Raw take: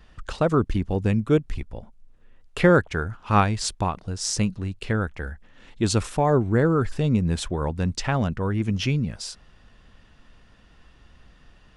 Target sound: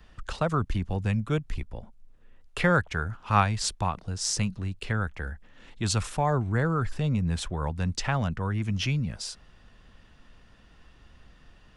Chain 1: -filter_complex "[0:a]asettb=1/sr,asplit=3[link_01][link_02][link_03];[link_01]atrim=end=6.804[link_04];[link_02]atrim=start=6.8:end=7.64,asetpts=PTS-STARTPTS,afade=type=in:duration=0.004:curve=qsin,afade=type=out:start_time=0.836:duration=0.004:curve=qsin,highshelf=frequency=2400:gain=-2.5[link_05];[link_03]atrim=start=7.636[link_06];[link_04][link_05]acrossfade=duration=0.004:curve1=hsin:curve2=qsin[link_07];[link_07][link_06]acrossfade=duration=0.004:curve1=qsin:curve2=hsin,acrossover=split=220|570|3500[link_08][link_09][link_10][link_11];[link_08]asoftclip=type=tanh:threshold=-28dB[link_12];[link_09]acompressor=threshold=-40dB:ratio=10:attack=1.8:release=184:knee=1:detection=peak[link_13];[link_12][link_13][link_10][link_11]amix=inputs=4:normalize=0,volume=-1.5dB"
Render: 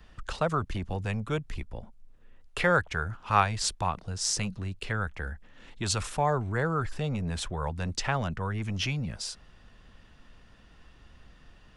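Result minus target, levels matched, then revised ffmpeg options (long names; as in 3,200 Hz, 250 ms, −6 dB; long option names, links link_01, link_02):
soft clipping: distortion +15 dB
-filter_complex "[0:a]asettb=1/sr,asplit=3[link_01][link_02][link_03];[link_01]atrim=end=6.804[link_04];[link_02]atrim=start=6.8:end=7.64,asetpts=PTS-STARTPTS,afade=type=in:duration=0.004:curve=qsin,afade=type=out:start_time=0.836:duration=0.004:curve=qsin,highshelf=frequency=2400:gain=-2.5[link_05];[link_03]atrim=start=7.636[link_06];[link_04][link_05]acrossfade=duration=0.004:curve1=hsin:curve2=qsin[link_07];[link_07][link_06]acrossfade=duration=0.004:curve1=qsin:curve2=hsin,acrossover=split=220|570|3500[link_08][link_09][link_10][link_11];[link_08]asoftclip=type=tanh:threshold=-16dB[link_12];[link_09]acompressor=threshold=-40dB:ratio=10:attack=1.8:release=184:knee=1:detection=peak[link_13];[link_12][link_13][link_10][link_11]amix=inputs=4:normalize=0,volume=-1.5dB"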